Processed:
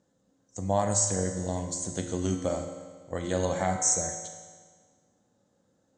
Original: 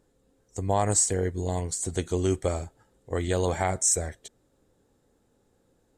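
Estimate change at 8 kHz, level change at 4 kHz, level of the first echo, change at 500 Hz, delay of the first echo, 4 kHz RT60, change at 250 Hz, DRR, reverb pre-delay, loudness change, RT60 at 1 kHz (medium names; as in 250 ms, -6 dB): -1.0 dB, -1.5 dB, no echo, -2.0 dB, no echo, 1.5 s, 0.0 dB, 4.5 dB, 21 ms, -2.0 dB, 1.6 s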